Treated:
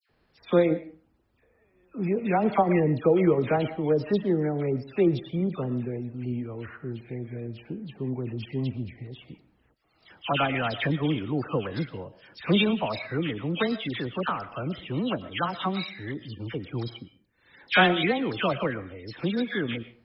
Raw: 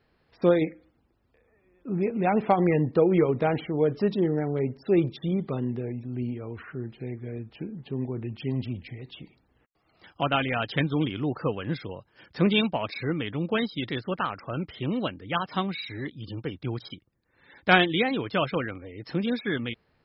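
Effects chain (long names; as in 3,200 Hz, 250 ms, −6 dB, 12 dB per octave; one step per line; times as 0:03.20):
all-pass dispersion lows, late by 95 ms, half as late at 1,800 Hz
0:08.69–0:09.19: high-shelf EQ 2,500 Hz −10.5 dB
convolution reverb RT60 0.35 s, pre-delay 75 ms, DRR 14.5 dB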